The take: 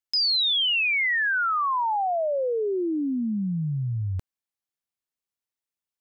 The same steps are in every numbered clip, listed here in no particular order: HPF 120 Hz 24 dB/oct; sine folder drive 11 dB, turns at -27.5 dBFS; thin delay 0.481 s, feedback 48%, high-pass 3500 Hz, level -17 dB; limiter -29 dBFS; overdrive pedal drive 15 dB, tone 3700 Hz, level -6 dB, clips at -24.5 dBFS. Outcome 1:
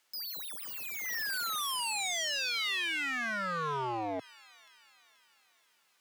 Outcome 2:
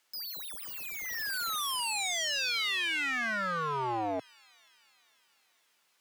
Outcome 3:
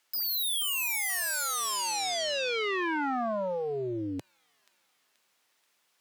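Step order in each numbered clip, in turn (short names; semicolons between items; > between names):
sine folder > thin delay > overdrive pedal > HPF > limiter; sine folder > HPF > limiter > thin delay > overdrive pedal; limiter > overdrive pedal > thin delay > sine folder > HPF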